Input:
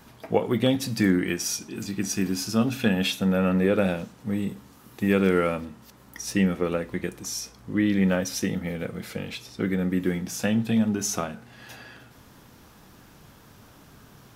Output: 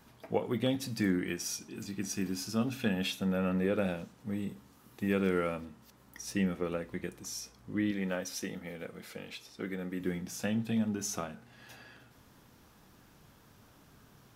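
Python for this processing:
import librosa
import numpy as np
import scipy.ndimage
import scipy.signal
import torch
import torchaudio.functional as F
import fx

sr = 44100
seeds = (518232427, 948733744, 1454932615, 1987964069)

y = fx.peak_eq(x, sr, hz=100.0, db=-9.5, octaves=2.2, at=(7.91, 10.0))
y = y * librosa.db_to_amplitude(-8.5)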